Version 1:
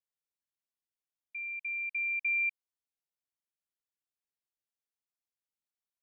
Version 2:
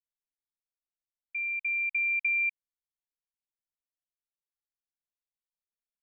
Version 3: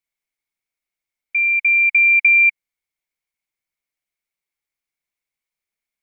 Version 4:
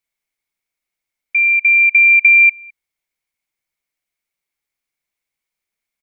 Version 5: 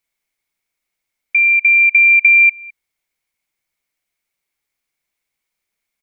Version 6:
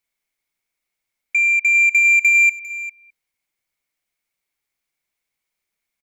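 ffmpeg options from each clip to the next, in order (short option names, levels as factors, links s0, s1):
-af "acompressor=threshold=0.0251:ratio=6,anlmdn=0.00251,volume=2.11"
-af "equalizer=f=2200:t=o:w=0.24:g=15,volume=2.24"
-filter_complex "[0:a]asplit=2[s0][s1];[s1]adelay=209.9,volume=0.0447,highshelf=f=4000:g=-4.72[s2];[s0][s2]amix=inputs=2:normalize=0,volume=1.58"
-af "acompressor=threshold=0.112:ratio=1.5,volume=1.58"
-af "asoftclip=type=tanh:threshold=0.398,aecho=1:1:400:0.2,volume=0.75"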